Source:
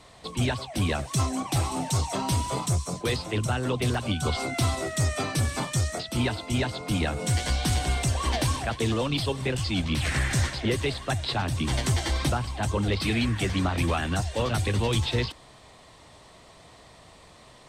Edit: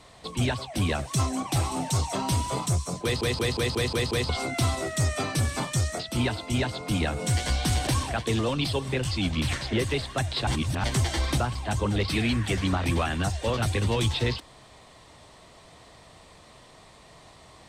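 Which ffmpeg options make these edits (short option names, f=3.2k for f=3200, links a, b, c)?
-filter_complex "[0:a]asplit=12[a][b][c][d][e][f][g][h][i][j][k][l];[a]atrim=end=3.212[m];[b]atrim=start=3.028:end=3.212[n];[c]atrim=start=3.028:end=3.212[o];[d]atrim=start=3.028:end=3.212[p];[e]atrim=start=3.028:end=3.212[q];[f]atrim=start=3.028:end=3.212[r];[g]atrim=start=3.028:end=3.212[s];[h]atrim=start=4.288:end=7.872[t];[i]atrim=start=8.398:end=10.062[u];[j]atrim=start=10.448:end=11.392[v];[k]atrim=start=11.388:end=11.762,asetpts=PTS-STARTPTS,areverse[w];[l]atrim=start=11.758[x];[m][n]acrossfade=d=0.004:c1=hsin:c2=hsin[y];[y][o]acrossfade=d=0.004:c1=hsin:c2=hsin[z];[z][p]acrossfade=d=0.004:c1=hsin:c2=hsin[aa];[aa][q]acrossfade=d=0.004:c1=hsin:c2=hsin[ab];[ab][r]acrossfade=d=0.004:c1=hsin:c2=hsin[ac];[ac][s]acrossfade=d=0.004:c1=hsin:c2=hsin[ad];[ad][t]acrossfade=d=0.004:c1=hsin:c2=hsin[ae];[ae][u]acrossfade=d=0.004:c1=hsin:c2=hsin[af];[af][v]acrossfade=d=0.004:c1=hsin:c2=hsin[ag];[ag][w]acrossfade=d=0.004:c1=hsin:c2=hsin[ah];[ah][x]acrossfade=d=0.004:c1=hsin:c2=hsin"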